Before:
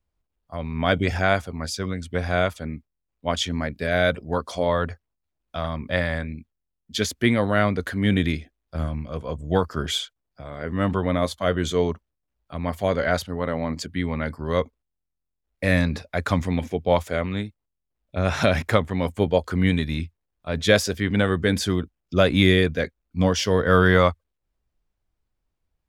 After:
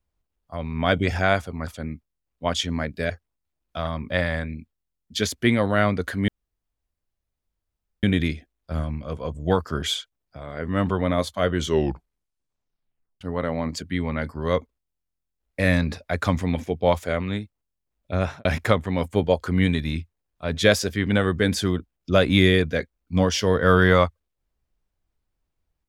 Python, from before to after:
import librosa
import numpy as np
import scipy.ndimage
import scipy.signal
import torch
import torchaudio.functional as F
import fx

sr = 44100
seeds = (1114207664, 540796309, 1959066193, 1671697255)

y = fx.studio_fade_out(x, sr, start_s=18.2, length_s=0.29)
y = fx.edit(y, sr, fx.cut(start_s=1.67, length_s=0.82),
    fx.cut(start_s=3.92, length_s=0.97),
    fx.insert_room_tone(at_s=8.07, length_s=1.75),
    fx.tape_stop(start_s=11.62, length_s=1.63), tone=tone)